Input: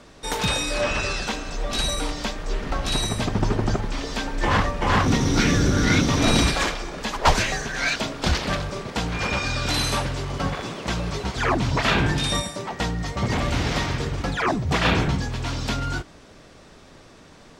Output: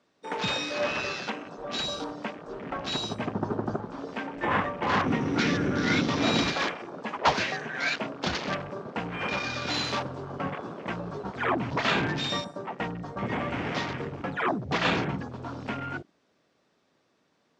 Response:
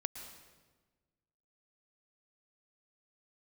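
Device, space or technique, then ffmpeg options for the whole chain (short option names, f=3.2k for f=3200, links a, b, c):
over-cleaned archive recording: -af "highpass=170,lowpass=6.6k,afwtdn=0.0251,volume=-4dB"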